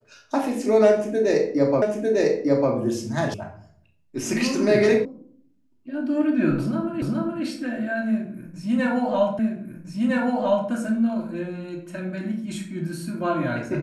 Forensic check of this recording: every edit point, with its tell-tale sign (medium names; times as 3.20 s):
1.82 s: repeat of the last 0.9 s
3.34 s: sound stops dead
5.05 s: sound stops dead
7.02 s: repeat of the last 0.42 s
9.39 s: repeat of the last 1.31 s